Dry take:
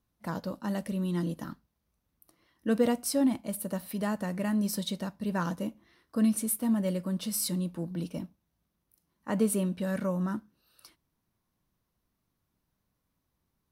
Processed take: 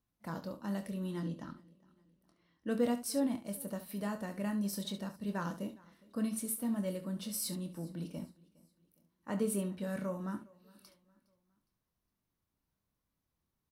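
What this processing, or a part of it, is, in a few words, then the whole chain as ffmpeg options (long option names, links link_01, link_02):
slapback doubling: -filter_complex "[0:a]asettb=1/sr,asplit=3[link_01][link_02][link_03];[link_01]atrim=end=1.204[link_04];[link_02]atrim=start=1.2:end=2.67,asetpts=PTS-STARTPTS,afade=type=in:duration=0.004:curve=qsin,afade=type=out:start_time=1.466:duration=0.004:curve=qsin,lowpass=5800[link_05];[link_03]atrim=start=2.666[link_06];[link_04][link_05]acrossfade=duration=0.004:curve1=hsin:curve2=qsin[link_07];[link_07][link_06]acrossfade=duration=0.004:curve1=qsin:curve2=hsin,aecho=1:1:411|822|1233:0.0631|0.0265|0.0111,asplit=3[link_08][link_09][link_10];[link_09]adelay=25,volume=-8.5dB[link_11];[link_10]adelay=70,volume=-12dB[link_12];[link_08][link_11][link_12]amix=inputs=3:normalize=0,volume=-7dB"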